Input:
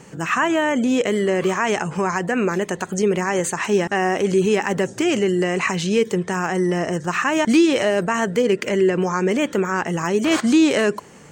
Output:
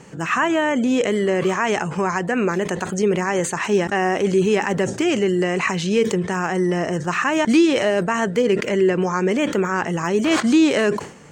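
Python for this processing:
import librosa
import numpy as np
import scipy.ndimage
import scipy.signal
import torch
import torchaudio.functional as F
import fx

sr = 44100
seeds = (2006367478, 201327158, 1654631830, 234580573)

y = fx.high_shelf(x, sr, hz=11000.0, db=-9.0)
y = fx.sustainer(y, sr, db_per_s=110.0)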